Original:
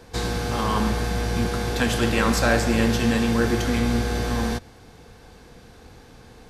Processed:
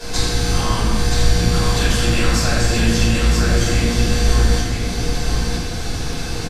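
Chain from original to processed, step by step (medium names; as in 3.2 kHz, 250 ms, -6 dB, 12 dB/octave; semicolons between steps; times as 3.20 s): octave divider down 2 oct, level 0 dB; peaking EQ 6.1 kHz +12 dB 2.4 oct; compression 6:1, threshold -35 dBFS, peak gain reduction 21 dB; on a send: delay 974 ms -5 dB; on the sum: simulated room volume 270 m³, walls mixed, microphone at 5.3 m; trim +3 dB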